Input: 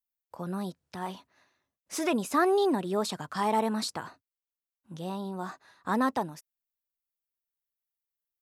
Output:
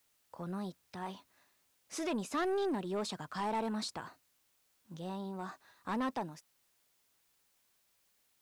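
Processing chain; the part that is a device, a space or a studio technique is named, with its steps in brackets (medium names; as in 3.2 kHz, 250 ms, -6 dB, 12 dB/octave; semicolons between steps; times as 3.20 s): compact cassette (saturation -24 dBFS, distortion -13 dB; low-pass 8.7 kHz 12 dB/octave; wow and flutter 23 cents; white noise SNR 34 dB); trim -5 dB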